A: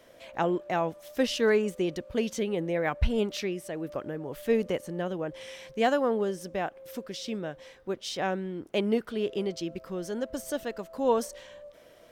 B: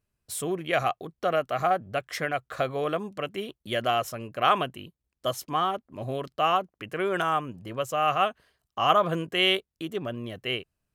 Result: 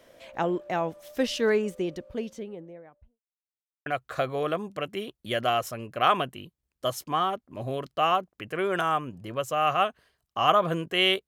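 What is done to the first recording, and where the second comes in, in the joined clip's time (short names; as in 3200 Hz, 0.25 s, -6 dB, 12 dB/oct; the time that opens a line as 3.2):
A
1.47–3.2 studio fade out
3.2–3.86 mute
3.86 switch to B from 2.27 s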